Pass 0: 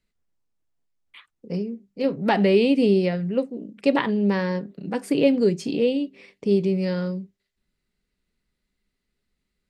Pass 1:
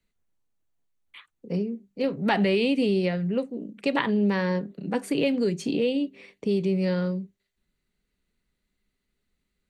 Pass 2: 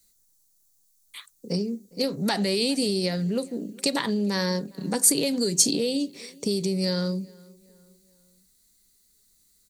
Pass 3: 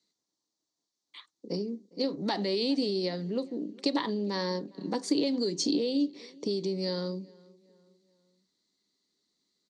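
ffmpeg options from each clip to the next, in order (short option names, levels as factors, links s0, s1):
-filter_complex "[0:a]bandreject=f=5100:w=7.6,acrossover=split=130|1000|2700[s0][s1][s2][s3];[s1]alimiter=limit=0.133:level=0:latency=1:release=202[s4];[s0][s4][s2][s3]amix=inputs=4:normalize=0"
-filter_complex "[0:a]acompressor=threshold=0.0562:ratio=6,asplit=2[s0][s1];[s1]adelay=408,lowpass=f=2600:p=1,volume=0.0631,asplit=2[s2][s3];[s3]adelay=408,lowpass=f=2600:p=1,volume=0.46,asplit=2[s4][s5];[s5]adelay=408,lowpass=f=2600:p=1,volume=0.46[s6];[s0][s2][s4][s6]amix=inputs=4:normalize=0,aexciter=amount=10.3:drive=6.2:freq=4200,volume=1.33"
-af "highpass=220,equalizer=f=310:t=q:w=4:g=9,equalizer=f=1000:t=q:w=4:g=4,equalizer=f=1500:t=q:w=4:g=-7,equalizer=f=2500:t=q:w=4:g=-6,lowpass=f=5000:w=0.5412,lowpass=f=5000:w=1.3066,volume=0.596"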